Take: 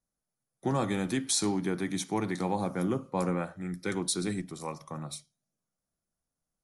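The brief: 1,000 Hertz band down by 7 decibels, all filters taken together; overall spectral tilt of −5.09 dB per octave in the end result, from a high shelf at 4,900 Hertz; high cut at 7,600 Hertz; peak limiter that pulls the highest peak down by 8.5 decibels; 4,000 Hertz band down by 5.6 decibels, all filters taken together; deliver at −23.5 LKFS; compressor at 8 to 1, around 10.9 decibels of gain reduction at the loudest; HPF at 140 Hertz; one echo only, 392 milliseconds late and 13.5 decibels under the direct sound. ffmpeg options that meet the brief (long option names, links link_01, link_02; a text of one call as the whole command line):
ffmpeg -i in.wav -af "highpass=140,lowpass=7600,equalizer=frequency=1000:width_type=o:gain=-9,equalizer=frequency=4000:width_type=o:gain=-8.5,highshelf=frequency=4900:gain=5,acompressor=threshold=-38dB:ratio=8,alimiter=level_in=11.5dB:limit=-24dB:level=0:latency=1,volume=-11.5dB,aecho=1:1:392:0.211,volume=22dB" out.wav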